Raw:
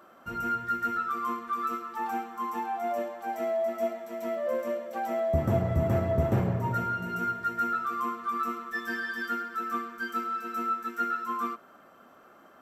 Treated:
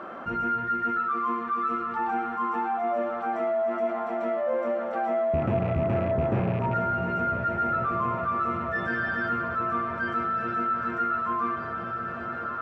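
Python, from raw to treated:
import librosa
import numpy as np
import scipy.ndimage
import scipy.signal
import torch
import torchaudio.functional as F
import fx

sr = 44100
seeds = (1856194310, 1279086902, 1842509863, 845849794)

y = fx.rattle_buzz(x, sr, strikes_db=-28.0, level_db=-32.0)
y = scipy.signal.sosfilt(scipy.signal.butter(2, 2300.0, 'lowpass', fs=sr, output='sos'), y)
y = fx.peak_eq(y, sr, hz=72.0, db=-4.5, octaves=1.6)
y = fx.echo_diffused(y, sr, ms=1540, feedback_pct=56, wet_db=-12)
y = fx.env_flatten(y, sr, amount_pct=50)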